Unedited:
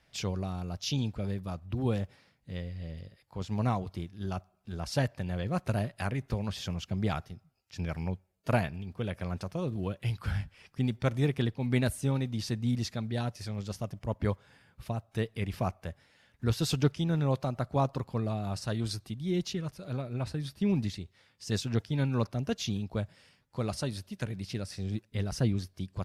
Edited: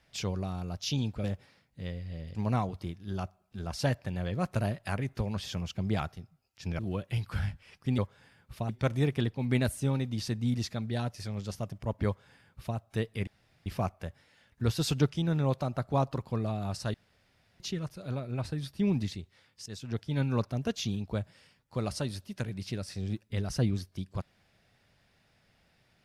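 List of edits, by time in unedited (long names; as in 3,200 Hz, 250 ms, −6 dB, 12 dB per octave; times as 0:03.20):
0:01.24–0:01.94: remove
0:03.05–0:03.48: remove
0:07.92–0:09.71: remove
0:14.27–0:14.98: duplicate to 0:10.90
0:15.48: splice in room tone 0.39 s
0:18.76–0:19.42: fill with room tone
0:21.48–0:22.04: fade in, from −16.5 dB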